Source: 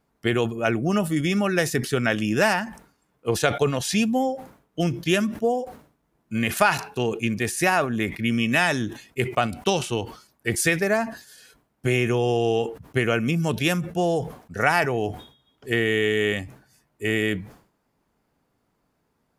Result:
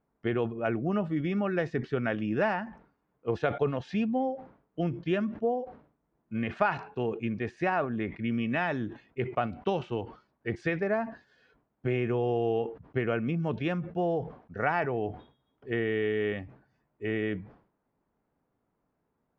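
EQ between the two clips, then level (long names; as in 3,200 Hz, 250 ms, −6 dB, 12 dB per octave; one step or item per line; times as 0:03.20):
high-frequency loss of the air 84 metres
head-to-tape spacing loss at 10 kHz 38 dB
low-shelf EQ 260 Hz −5 dB
−2.5 dB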